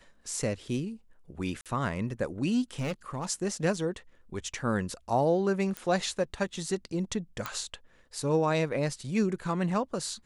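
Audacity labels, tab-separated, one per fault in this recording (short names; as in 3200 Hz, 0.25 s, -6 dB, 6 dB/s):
1.610000	1.660000	gap 47 ms
2.790000	3.250000	clipped -27.5 dBFS
5.770000	5.770000	pop -19 dBFS
7.460000	7.460000	pop -17 dBFS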